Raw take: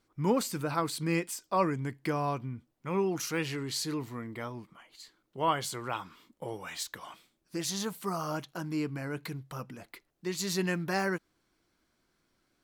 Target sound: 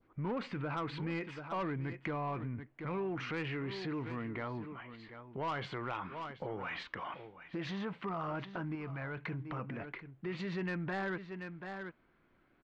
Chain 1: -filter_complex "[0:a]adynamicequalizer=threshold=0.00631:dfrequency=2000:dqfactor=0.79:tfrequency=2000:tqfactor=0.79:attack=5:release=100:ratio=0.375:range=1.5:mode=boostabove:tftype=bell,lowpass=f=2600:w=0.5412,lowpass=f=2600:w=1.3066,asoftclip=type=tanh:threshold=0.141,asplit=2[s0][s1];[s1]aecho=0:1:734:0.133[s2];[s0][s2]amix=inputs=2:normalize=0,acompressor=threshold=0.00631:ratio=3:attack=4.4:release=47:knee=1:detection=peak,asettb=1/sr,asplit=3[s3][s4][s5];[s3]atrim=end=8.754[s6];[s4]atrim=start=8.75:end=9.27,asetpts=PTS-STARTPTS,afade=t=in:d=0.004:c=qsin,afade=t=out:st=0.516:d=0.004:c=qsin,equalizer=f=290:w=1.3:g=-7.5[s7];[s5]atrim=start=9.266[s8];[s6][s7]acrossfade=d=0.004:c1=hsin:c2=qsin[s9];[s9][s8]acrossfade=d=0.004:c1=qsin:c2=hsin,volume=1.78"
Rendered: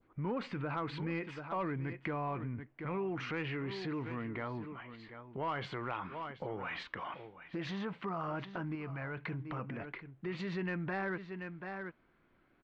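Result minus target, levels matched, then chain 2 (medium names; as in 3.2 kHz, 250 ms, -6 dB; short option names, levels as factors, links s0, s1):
saturation: distortion -9 dB
-filter_complex "[0:a]adynamicequalizer=threshold=0.00631:dfrequency=2000:dqfactor=0.79:tfrequency=2000:tqfactor=0.79:attack=5:release=100:ratio=0.375:range=1.5:mode=boostabove:tftype=bell,lowpass=f=2600:w=0.5412,lowpass=f=2600:w=1.3066,asoftclip=type=tanh:threshold=0.0668,asplit=2[s0][s1];[s1]aecho=0:1:734:0.133[s2];[s0][s2]amix=inputs=2:normalize=0,acompressor=threshold=0.00631:ratio=3:attack=4.4:release=47:knee=1:detection=peak,asettb=1/sr,asplit=3[s3][s4][s5];[s3]atrim=end=8.754[s6];[s4]atrim=start=8.75:end=9.27,asetpts=PTS-STARTPTS,afade=t=in:d=0.004:c=qsin,afade=t=out:st=0.516:d=0.004:c=qsin,equalizer=f=290:w=1.3:g=-7.5[s7];[s5]atrim=start=9.266[s8];[s6][s7]acrossfade=d=0.004:c1=hsin:c2=qsin[s9];[s9][s8]acrossfade=d=0.004:c1=qsin:c2=hsin,volume=1.78"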